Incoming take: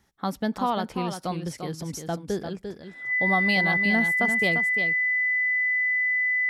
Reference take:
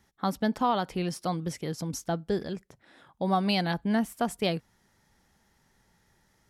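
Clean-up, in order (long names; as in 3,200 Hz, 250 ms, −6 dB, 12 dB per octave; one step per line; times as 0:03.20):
notch filter 2,000 Hz, Q 30
echo removal 347 ms −7.5 dB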